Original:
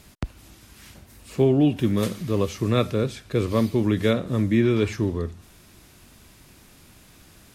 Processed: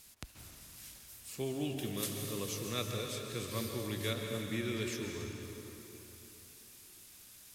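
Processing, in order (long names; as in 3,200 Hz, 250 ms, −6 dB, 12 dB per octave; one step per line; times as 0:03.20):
first-order pre-emphasis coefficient 0.9
dense smooth reverb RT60 3.5 s, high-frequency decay 0.75×, pre-delay 120 ms, DRR 2 dB
slack as between gear wheels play −57 dBFS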